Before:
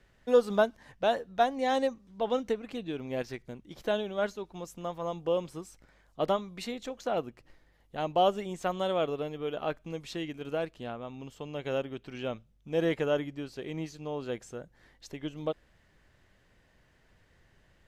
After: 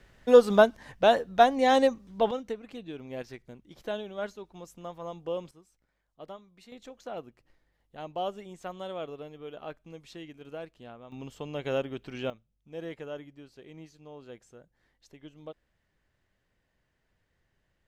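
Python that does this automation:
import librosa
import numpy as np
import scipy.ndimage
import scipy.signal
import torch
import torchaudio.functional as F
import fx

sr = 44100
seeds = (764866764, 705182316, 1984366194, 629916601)

y = fx.gain(x, sr, db=fx.steps((0.0, 6.0), (2.31, -4.5), (5.51, -16.0), (6.72, -8.0), (11.12, 2.0), (12.3, -11.0)))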